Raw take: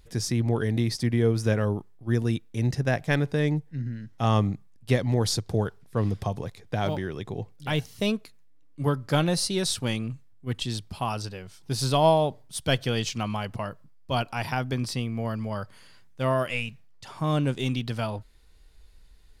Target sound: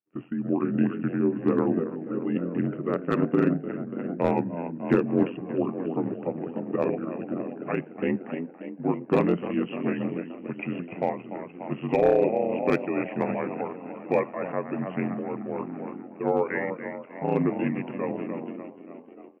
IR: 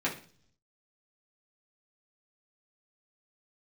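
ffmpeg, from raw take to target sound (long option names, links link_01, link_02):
-filter_complex "[0:a]asplit=9[link_01][link_02][link_03][link_04][link_05][link_06][link_07][link_08][link_09];[link_02]adelay=292,afreqshift=59,volume=-10dB[link_10];[link_03]adelay=584,afreqshift=118,volume=-13.9dB[link_11];[link_04]adelay=876,afreqshift=177,volume=-17.8dB[link_12];[link_05]adelay=1168,afreqshift=236,volume=-21.6dB[link_13];[link_06]adelay=1460,afreqshift=295,volume=-25.5dB[link_14];[link_07]adelay=1752,afreqshift=354,volume=-29.4dB[link_15];[link_08]adelay=2044,afreqshift=413,volume=-33.3dB[link_16];[link_09]adelay=2336,afreqshift=472,volume=-37.1dB[link_17];[link_01][link_10][link_11][link_12][link_13][link_14][link_15][link_16][link_17]amix=inputs=9:normalize=0,aresample=8000,aresample=44100,asetrate=33038,aresample=44100,atempo=1.33484,aeval=exprs='val(0)*sin(2*PI*44*n/s)':channel_layout=same,highpass=frequency=200:width=0.5412,highpass=frequency=200:width=1.3066,tremolo=f=1.2:d=0.39,volume=20.5dB,asoftclip=hard,volume=-20.5dB,tiltshelf=frequency=1200:gain=6,agate=range=-33dB:threshold=-41dB:ratio=3:detection=peak,asplit=2[link_18][link_19];[1:a]atrim=start_sample=2205[link_20];[link_19][link_20]afir=irnorm=-1:irlink=0,volume=-25.5dB[link_21];[link_18][link_21]amix=inputs=2:normalize=0,volume=3.5dB"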